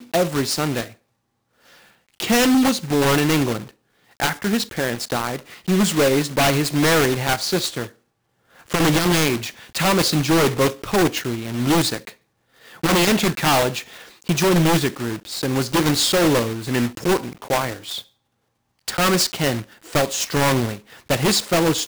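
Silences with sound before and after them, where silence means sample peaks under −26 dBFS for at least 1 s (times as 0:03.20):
0:00.86–0:02.20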